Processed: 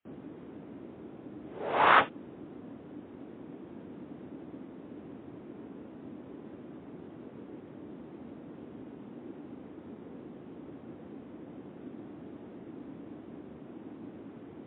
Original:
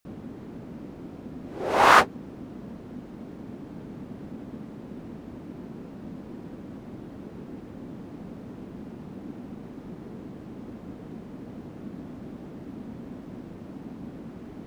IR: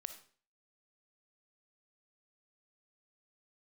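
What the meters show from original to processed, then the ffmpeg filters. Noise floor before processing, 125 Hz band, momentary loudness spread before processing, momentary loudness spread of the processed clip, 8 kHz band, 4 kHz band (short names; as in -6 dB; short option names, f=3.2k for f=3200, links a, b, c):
-44 dBFS, -9.5 dB, 6 LU, 6 LU, under -35 dB, -7.0 dB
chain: -af "afreqshift=48,volume=-5.5dB" -ar 8000 -c:a libmp3lame -b:a 24k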